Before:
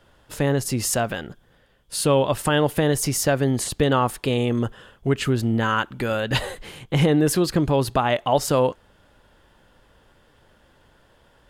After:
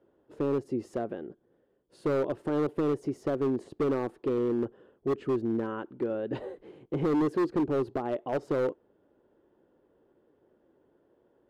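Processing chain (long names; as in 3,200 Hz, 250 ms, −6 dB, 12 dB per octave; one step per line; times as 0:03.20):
resonant band-pass 360 Hz, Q 2.9
gain into a clipping stage and back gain 24 dB
level +1 dB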